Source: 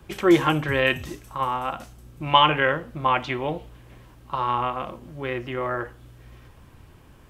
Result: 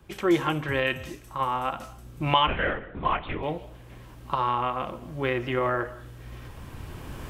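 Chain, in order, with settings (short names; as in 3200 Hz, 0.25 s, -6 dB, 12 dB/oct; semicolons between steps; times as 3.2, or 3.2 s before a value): recorder AGC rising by 8.9 dB/s; on a send at -18.5 dB: reverb RT60 0.50 s, pre-delay 0.115 s; 2.47–3.43 on the sum: LPC vocoder at 8 kHz whisper; gain -5.5 dB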